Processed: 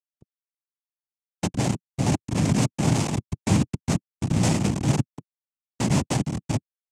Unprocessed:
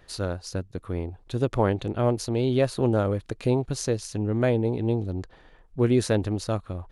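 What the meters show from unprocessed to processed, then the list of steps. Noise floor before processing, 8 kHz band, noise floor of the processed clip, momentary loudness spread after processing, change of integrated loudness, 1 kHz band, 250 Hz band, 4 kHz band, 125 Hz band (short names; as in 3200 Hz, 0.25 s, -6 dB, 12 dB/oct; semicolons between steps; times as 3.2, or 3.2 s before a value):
-55 dBFS, +6.5 dB, under -85 dBFS, 7 LU, +1.5 dB, +1.0 dB, +1.5 dB, +3.5 dB, +2.5 dB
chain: spectral noise reduction 6 dB; swelling echo 0.107 s, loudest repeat 5, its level -18 dB; de-esser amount 75%; high shelf 6100 Hz -10.5 dB; Schmitt trigger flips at -22 dBFS; noise vocoder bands 4; tone controls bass +12 dB, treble +10 dB; gate -39 dBFS, range -27 dB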